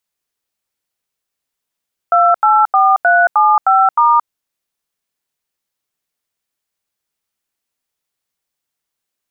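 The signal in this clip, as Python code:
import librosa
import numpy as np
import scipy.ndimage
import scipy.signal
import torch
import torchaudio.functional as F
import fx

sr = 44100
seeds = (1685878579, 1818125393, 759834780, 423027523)

y = fx.dtmf(sr, digits='284375*', tone_ms=224, gap_ms=85, level_db=-10.0)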